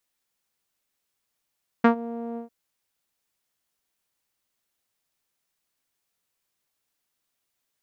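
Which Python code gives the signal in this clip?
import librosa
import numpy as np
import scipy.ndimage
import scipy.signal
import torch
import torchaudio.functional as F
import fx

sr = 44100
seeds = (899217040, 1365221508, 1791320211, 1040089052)

y = fx.sub_voice(sr, note=58, wave='saw', cutoff_hz=630.0, q=1.5, env_oct=1.5, env_s=0.13, attack_ms=7.3, decay_s=0.1, sustain_db=-19.5, release_s=0.12, note_s=0.53, slope=12)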